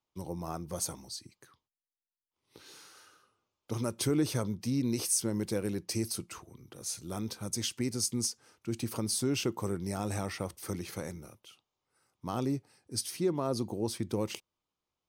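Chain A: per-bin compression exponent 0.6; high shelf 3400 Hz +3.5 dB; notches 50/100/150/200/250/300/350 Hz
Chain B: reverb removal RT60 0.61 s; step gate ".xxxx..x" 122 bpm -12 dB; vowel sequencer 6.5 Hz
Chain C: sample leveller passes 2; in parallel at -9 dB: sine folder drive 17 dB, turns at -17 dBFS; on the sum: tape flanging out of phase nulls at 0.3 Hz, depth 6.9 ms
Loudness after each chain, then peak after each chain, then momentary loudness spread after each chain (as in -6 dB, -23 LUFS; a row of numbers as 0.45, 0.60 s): -29.5, -48.5, -28.5 LUFS; -7.5, -26.5, -16.0 dBFS; 14, 18, 11 LU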